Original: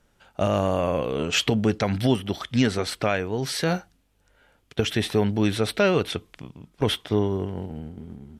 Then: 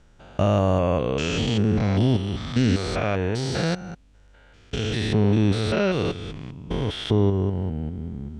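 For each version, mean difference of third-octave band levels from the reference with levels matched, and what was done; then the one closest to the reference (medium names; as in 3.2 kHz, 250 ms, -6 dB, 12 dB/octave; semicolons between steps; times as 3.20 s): 6.0 dB: spectrogram pixelated in time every 200 ms; low-pass 8.2 kHz 24 dB/octave; bass shelf 130 Hz +9 dB; in parallel at 0 dB: compression, threshold -34 dBFS, peak gain reduction 15.5 dB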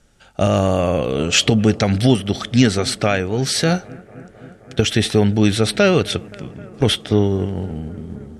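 2.5 dB: low-pass 10 kHz 24 dB/octave; tone controls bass +3 dB, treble +6 dB; band-stop 990 Hz, Q 6.3; on a send: bucket-brigade echo 262 ms, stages 4096, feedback 83%, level -24 dB; on the sum: trim +5.5 dB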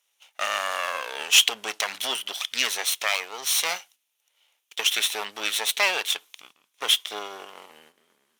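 14.5 dB: comb filter that takes the minimum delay 0.31 ms; high-pass 1.1 kHz 12 dB/octave; gate -58 dBFS, range -8 dB; tilt EQ +2 dB/octave; trim +4.5 dB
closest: second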